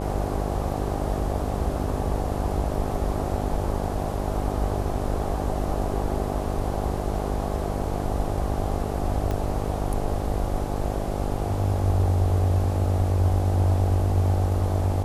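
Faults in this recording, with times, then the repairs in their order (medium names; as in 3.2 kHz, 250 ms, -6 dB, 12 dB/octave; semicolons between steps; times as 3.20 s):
buzz 50 Hz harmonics 17 -29 dBFS
9.31 s: pop -16 dBFS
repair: de-click; de-hum 50 Hz, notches 17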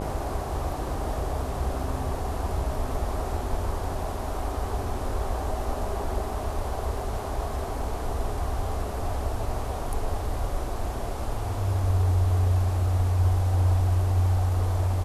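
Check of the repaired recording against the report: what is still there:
9.31 s: pop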